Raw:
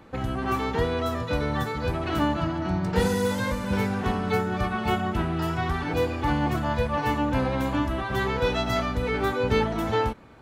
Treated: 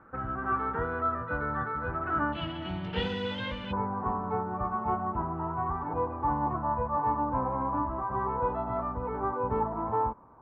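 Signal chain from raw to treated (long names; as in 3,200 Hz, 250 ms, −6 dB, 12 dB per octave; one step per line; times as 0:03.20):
transistor ladder low-pass 1,500 Hz, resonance 75%, from 0:02.32 3,300 Hz, from 0:03.71 1,100 Hz
level +3 dB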